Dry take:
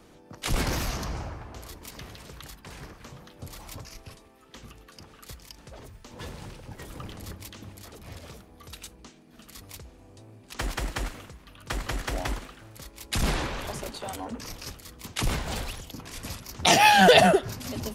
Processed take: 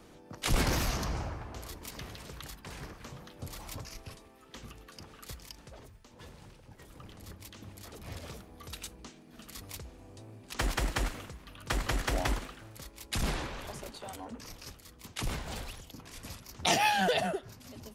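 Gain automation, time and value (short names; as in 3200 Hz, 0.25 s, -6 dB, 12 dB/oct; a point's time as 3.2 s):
5.47 s -1 dB
6.17 s -11 dB
6.93 s -11 dB
8.12 s 0 dB
12.43 s 0 dB
13.48 s -7.5 dB
16.72 s -7.5 dB
17.2 s -14 dB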